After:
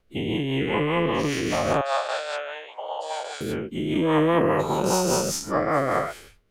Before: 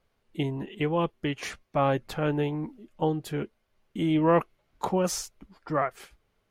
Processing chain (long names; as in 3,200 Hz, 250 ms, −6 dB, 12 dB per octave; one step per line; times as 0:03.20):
every bin's largest magnitude spread in time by 480 ms
rotating-speaker cabinet horn 5 Hz
0:01.81–0:03.41: Chebyshev band-pass filter 600–8,400 Hz, order 4